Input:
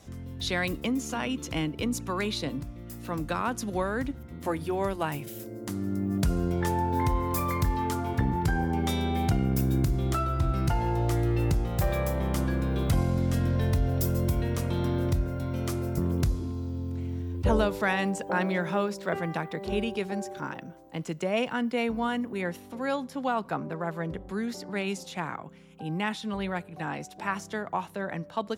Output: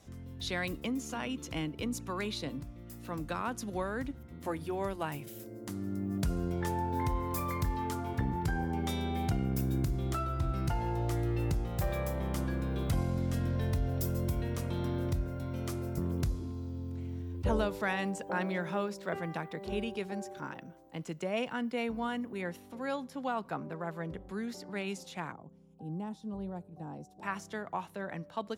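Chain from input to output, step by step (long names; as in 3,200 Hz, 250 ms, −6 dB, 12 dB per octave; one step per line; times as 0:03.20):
0:25.32–0:27.23: drawn EQ curve 210 Hz 0 dB, 810 Hz −5 dB, 2,100 Hz −25 dB, 5,400 Hz −11 dB
level −6 dB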